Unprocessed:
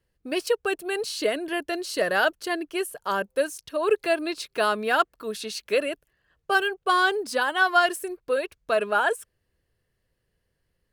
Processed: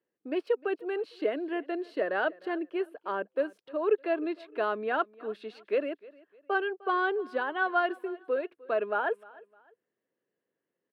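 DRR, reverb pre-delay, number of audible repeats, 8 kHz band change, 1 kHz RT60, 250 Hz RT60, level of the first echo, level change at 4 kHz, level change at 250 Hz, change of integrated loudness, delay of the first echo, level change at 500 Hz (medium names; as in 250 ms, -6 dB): no reverb, no reverb, 2, under -30 dB, no reverb, no reverb, -22.0 dB, -15.5 dB, -2.5 dB, -6.0 dB, 305 ms, -4.0 dB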